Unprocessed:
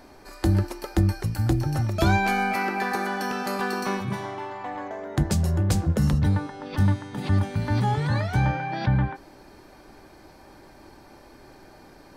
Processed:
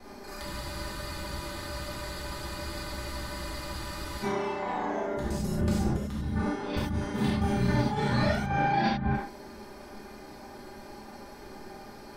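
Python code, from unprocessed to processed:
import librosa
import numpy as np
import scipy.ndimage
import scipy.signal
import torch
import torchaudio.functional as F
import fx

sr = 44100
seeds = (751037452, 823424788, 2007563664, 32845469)

y = fx.local_reverse(x, sr, ms=34.0)
y = y + 0.45 * np.pad(y, (int(4.9 * sr / 1000.0), 0))[:len(y)]
y = fx.over_compress(y, sr, threshold_db=-26.0, ratio=-0.5)
y = fx.rev_gated(y, sr, seeds[0], gate_ms=120, shape='flat', drr_db=-7.0)
y = fx.spec_freeze(y, sr, seeds[1], at_s=0.45, hold_s=3.79)
y = y * 10.0 ** (-7.0 / 20.0)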